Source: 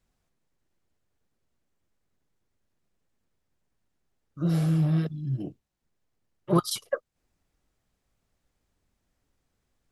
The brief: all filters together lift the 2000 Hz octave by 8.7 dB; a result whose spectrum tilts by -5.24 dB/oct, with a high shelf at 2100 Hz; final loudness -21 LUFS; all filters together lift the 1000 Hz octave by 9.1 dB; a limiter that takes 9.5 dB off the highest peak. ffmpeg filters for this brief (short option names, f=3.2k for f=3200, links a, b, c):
-af "equalizer=f=1k:t=o:g=7.5,equalizer=f=2k:t=o:g=4,highshelf=f=2.1k:g=8.5,volume=6dB,alimiter=limit=-8dB:level=0:latency=1"